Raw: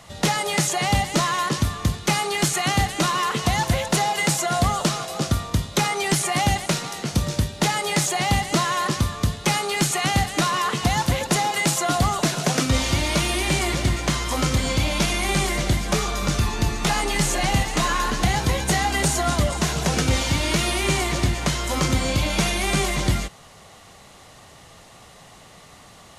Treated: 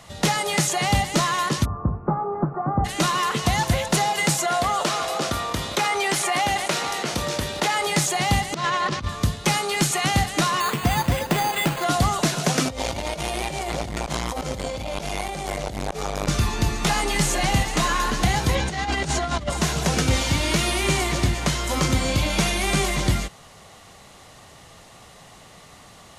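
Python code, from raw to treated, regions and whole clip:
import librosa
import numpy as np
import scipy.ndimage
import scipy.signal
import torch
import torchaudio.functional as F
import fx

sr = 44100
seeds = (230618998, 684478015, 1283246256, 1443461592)

y = fx.steep_lowpass(x, sr, hz=1300.0, slope=48, at=(1.64, 2.84), fade=0.02)
y = fx.hum_notches(y, sr, base_hz=50, count=2, at=(1.64, 2.84), fade=0.02)
y = fx.dmg_buzz(y, sr, base_hz=120.0, harmonics=23, level_db=-53.0, tilt_db=-8, odd_only=False, at=(1.64, 2.84), fade=0.02)
y = fx.chain(y, sr, fx.bass_treble(bass_db=-14, treble_db=-5),
    fx.echo_single(ms=401, db=-21.0),
    fx.env_flatten(amount_pct=50), at=(4.46, 7.87))
y = fx.chain(y, sr, fx.lowpass(hz=4700.0, slope=12),
    fx.over_compress(threshold_db=-24.0, ratio=-0.5), at=(8.54, 9.09))
y = fx.chain(y, sr, fx.lowpass(hz=3800.0, slope=12),
    fx.resample_bad(factor=8, down='none', up='hold'), at=(10.6, 11.84))
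y = fx.chain(y, sr, fx.band_shelf(hz=620.0, db=9.5, octaves=1.2),
    fx.over_compress(threshold_db=-23.0, ratio=-0.5),
    fx.transformer_sat(knee_hz=640.0), at=(12.65, 16.28))
y = fx.chain(y, sr, fx.lowpass(hz=5700.0, slope=12),
    fx.over_compress(threshold_db=-24.0, ratio=-0.5), at=(18.55, 19.5))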